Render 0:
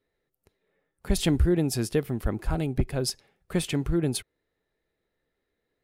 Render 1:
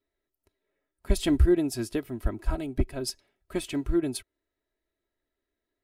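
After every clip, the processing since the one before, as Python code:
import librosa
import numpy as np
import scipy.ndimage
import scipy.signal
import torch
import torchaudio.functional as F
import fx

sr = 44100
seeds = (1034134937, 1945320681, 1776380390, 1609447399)

y = x + 0.68 * np.pad(x, (int(3.1 * sr / 1000.0), 0))[:len(x)]
y = fx.upward_expand(y, sr, threshold_db=-29.0, expansion=1.5)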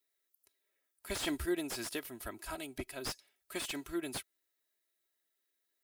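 y = fx.tilt_eq(x, sr, slope=4.5)
y = fx.slew_limit(y, sr, full_power_hz=130.0)
y = F.gain(torch.from_numpy(y), -5.0).numpy()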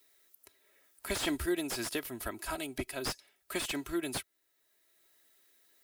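y = fx.band_squash(x, sr, depth_pct=40)
y = F.gain(torch.from_numpy(y), 4.0).numpy()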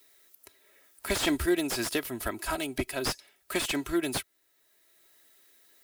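y = fx.self_delay(x, sr, depth_ms=0.06)
y = F.gain(torch.from_numpy(y), 6.0).numpy()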